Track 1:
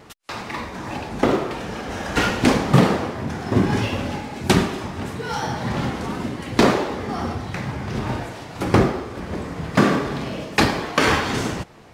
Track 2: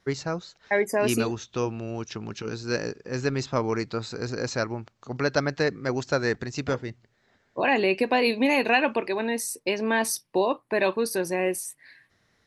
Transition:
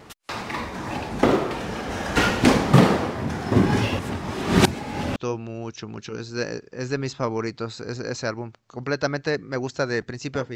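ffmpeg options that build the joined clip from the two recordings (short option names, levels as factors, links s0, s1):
-filter_complex "[0:a]apad=whole_dur=10.55,atrim=end=10.55,asplit=2[s0][s1];[s0]atrim=end=3.992[s2];[s1]atrim=start=3.988:end=5.162,asetpts=PTS-STARTPTS,areverse[s3];[1:a]atrim=start=1.488:end=6.88[s4];[s2][s3]acrossfade=d=0.004:c1=hsin:c2=hsin[s5];[s5][s4]acrossfade=d=0.004:c1=hsin:c2=hsin"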